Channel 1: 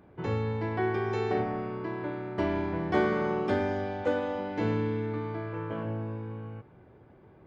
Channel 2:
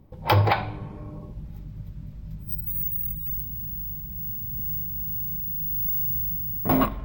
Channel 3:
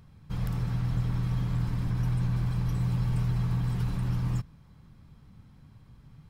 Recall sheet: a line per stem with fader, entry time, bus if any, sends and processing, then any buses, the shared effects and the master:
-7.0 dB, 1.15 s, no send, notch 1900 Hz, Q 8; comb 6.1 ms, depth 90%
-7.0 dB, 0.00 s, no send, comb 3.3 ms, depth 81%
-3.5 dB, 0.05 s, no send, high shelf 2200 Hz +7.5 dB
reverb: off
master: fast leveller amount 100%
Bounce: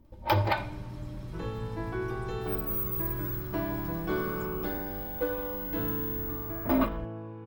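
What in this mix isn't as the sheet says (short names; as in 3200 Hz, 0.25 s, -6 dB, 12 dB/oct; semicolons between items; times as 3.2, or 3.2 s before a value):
stem 3 -3.5 dB -> -13.5 dB; master: missing fast leveller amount 100%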